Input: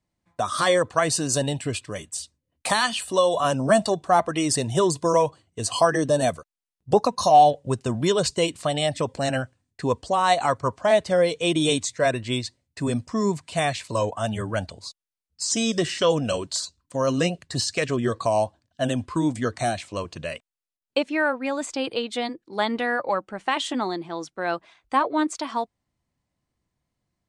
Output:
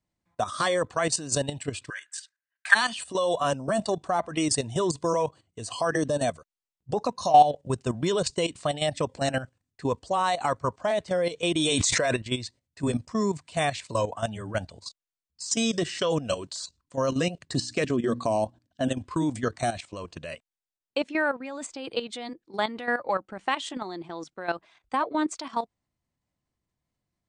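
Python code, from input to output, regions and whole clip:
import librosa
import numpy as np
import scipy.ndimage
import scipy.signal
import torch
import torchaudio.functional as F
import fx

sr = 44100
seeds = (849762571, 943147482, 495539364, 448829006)

y = fx.chain(x, sr, fx.highpass_res(hz=1600.0, q=14.0),
    fx.high_shelf(hz=4000.0, db=-5.0), at=(1.9, 2.75))
y = fx.chain(y, sr, fx.low_shelf(hz=370.0, db=-7.0),
    fx.env_flatten(amount_pct=100), at=(11.56, 12.16))
y = fx.chain(y, sr, fx.peak_eq(hz=260.0, db=8.5, octaves=1.2),
    fx.hum_notches(base_hz=60, count=5), at=(17.44, 18.88))
y = scipy.signal.sosfilt(scipy.signal.butter(12, 9400.0, 'lowpass', fs=sr, output='sos'), y)
y = fx.level_steps(y, sr, step_db=12)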